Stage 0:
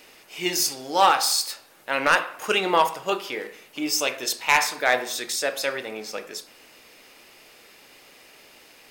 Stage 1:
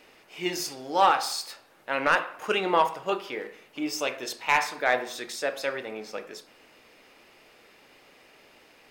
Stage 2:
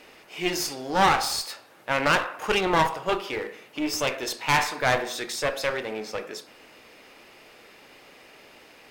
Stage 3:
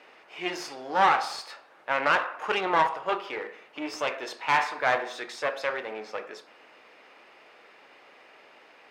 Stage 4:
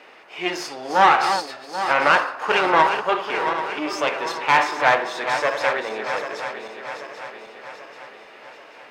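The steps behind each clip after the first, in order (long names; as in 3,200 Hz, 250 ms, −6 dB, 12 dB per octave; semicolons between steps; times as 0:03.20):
high-shelf EQ 4,100 Hz −11.5 dB; level −2 dB
asymmetric clip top −33 dBFS; level +5 dB
resonant band-pass 1,100 Hz, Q 0.63
feedback delay that plays each chunk backwards 393 ms, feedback 70%, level −8 dB; level +6.5 dB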